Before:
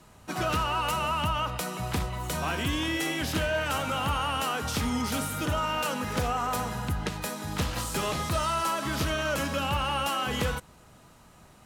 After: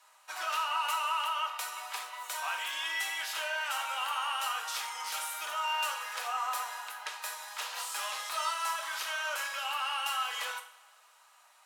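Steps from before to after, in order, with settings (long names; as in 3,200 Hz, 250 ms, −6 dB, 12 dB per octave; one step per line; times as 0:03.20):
high-pass filter 840 Hz 24 dB per octave
coupled-rooms reverb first 0.42 s, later 1.9 s, from −19 dB, DRR 2 dB
level −4.5 dB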